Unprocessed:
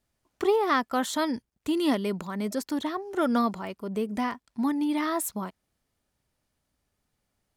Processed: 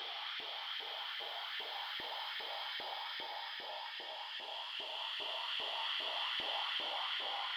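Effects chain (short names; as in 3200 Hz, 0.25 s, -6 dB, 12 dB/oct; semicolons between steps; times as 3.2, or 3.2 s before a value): opening faded in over 1.72 s; spectral gate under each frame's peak -20 dB weak; thirty-one-band EQ 800 Hz +11 dB, 3150 Hz +9 dB, 10000 Hz -8 dB; in parallel at -2 dB: negative-ratio compressor -44 dBFS; on the sum: soft clip -30 dBFS, distortion -15 dB; resonant high shelf 5600 Hz -12 dB, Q 1.5; Paulstretch 5.5×, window 1.00 s, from 0.72; LFO high-pass saw up 2.5 Hz 360–1900 Hz; gain -5.5 dB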